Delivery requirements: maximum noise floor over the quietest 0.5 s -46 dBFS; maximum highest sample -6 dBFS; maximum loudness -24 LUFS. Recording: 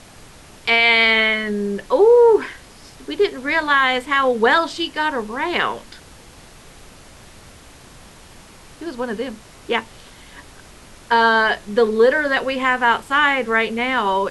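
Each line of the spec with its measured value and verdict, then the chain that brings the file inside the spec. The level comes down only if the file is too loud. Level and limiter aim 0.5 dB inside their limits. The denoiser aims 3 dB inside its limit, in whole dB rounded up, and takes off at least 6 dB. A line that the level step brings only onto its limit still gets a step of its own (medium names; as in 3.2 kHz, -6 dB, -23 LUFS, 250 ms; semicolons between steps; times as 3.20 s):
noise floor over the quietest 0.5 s -43 dBFS: fail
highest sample -5.0 dBFS: fail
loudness -17.0 LUFS: fail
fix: trim -7.5 dB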